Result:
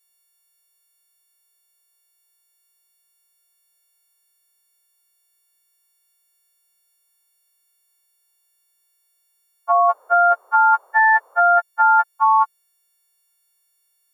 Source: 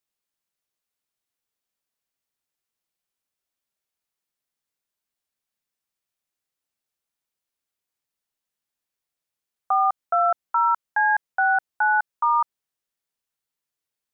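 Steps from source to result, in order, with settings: partials quantised in pitch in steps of 4 st; 9.82–11.56 s: band noise 440–1200 Hz -60 dBFS; trim +5.5 dB

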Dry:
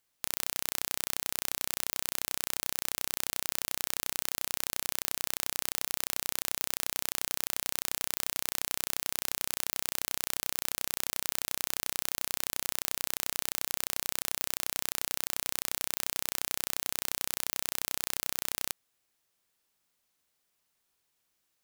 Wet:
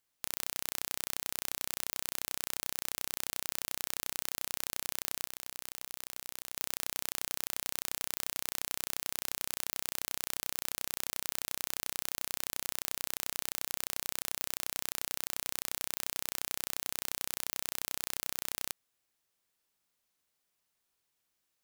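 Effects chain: 5.25–6.56 s: compressor with a negative ratio -42 dBFS, ratio -1; trim -3.5 dB

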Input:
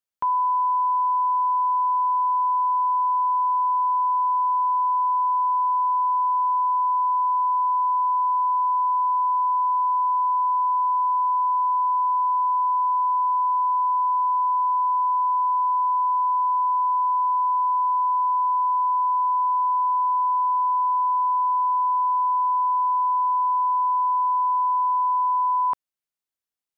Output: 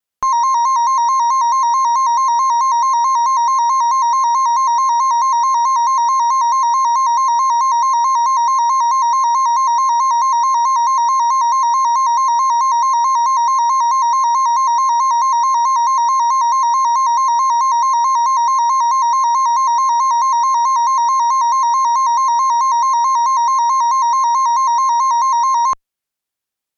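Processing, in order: Chebyshev shaper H 6 -18 dB, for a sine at -18 dBFS; vibrato with a chosen wave square 4.6 Hz, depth 100 cents; trim +7.5 dB

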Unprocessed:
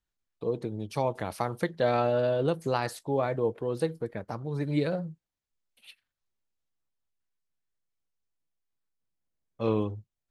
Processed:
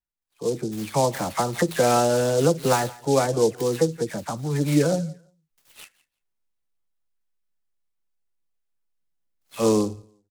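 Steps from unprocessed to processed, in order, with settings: delay that grows with frequency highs early, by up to 190 ms; on a send: feedback delay 171 ms, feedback 29%, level -20.5 dB; on the sum: level rider gain up to 8 dB; spectral noise reduction 8 dB; delay time shaken by noise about 5.9 kHz, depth 0.05 ms

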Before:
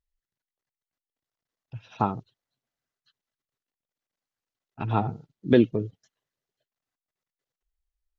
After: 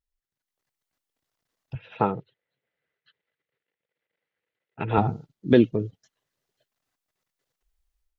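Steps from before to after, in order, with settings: level rider gain up to 11 dB; 1.75–4.98 s: cabinet simulation 110–3300 Hz, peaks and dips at 110 Hz -4 dB, 250 Hz -9 dB, 480 Hz +9 dB, 730 Hz -5 dB, 1.1 kHz -7 dB, 2 kHz +7 dB; trim -3 dB

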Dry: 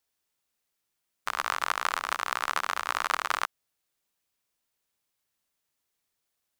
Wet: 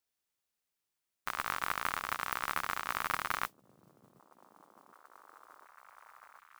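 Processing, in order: tracing distortion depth 0.13 ms; repeats whose band climbs or falls 731 ms, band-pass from 160 Hz, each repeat 0.7 oct, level -10 dB; modulation noise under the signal 14 dB; trim -6.5 dB

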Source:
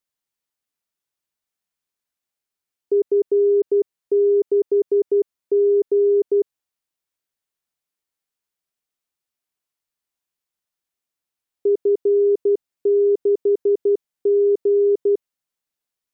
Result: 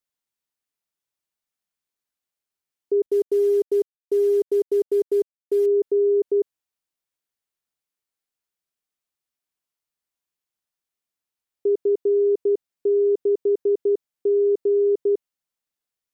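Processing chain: 3.06–5.66 s: CVSD coder 64 kbps; trim -2.5 dB

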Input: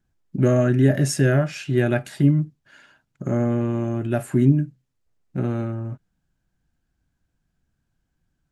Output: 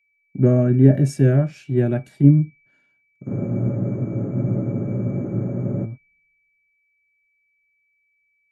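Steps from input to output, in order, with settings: whistle 2.3 kHz -40 dBFS; tilt shelf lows +9 dB, about 860 Hz; spectral freeze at 3.29 s, 2.56 s; three bands expanded up and down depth 70%; trim -7.5 dB

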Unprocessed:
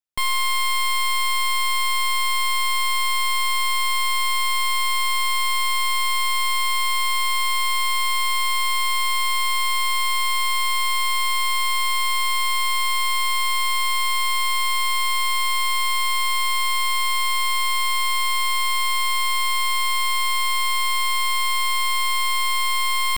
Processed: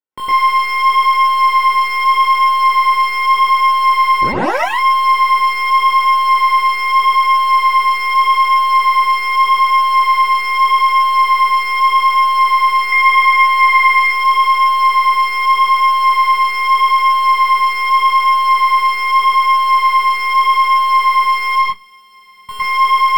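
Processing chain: 21.59–22.49 s: amplifier tone stack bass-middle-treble 10-0-1; chorus 0.82 Hz, delay 19.5 ms, depth 3.7 ms; 4.21 s: tape start 0.47 s; 12.81–14.00 s: peaking EQ 2 kHz +12.5 dB 0.25 oct; reverberation RT60 0.15 s, pre-delay 107 ms, DRR -5 dB; trim -8 dB

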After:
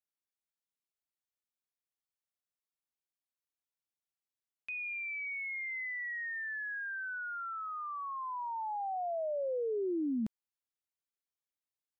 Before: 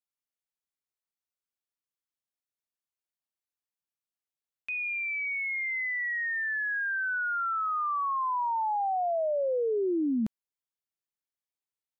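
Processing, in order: dynamic bell 1.2 kHz, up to -5 dB, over -43 dBFS, Q 1.2; trim -5.5 dB

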